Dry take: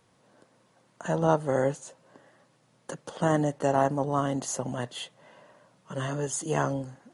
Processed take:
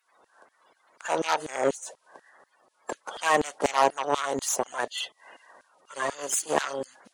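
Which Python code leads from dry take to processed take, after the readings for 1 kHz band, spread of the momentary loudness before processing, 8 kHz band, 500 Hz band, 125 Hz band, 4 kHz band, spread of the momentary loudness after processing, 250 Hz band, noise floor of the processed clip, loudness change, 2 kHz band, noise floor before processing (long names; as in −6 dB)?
+3.5 dB, 16 LU, +5.5 dB, −0.5 dB, −17.0 dB, +7.5 dB, 15 LU, −6.5 dB, −71 dBFS, +0.5 dB, +6.5 dB, −66 dBFS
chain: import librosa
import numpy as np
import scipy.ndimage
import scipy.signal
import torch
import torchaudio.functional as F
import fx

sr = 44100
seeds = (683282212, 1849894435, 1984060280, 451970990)

y = fx.spec_quant(x, sr, step_db=30)
y = fx.cheby_harmonics(y, sr, harmonics=(8,), levels_db=(-20,), full_scale_db=-10.0)
y = fx.filter_lfo_highpass(y, sr, shape='saw_down', hz=4.1, low_hz=330.0, high_hz=3500.0, q=0.86)
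y = y * librosa.db_to_amplitude(6.0)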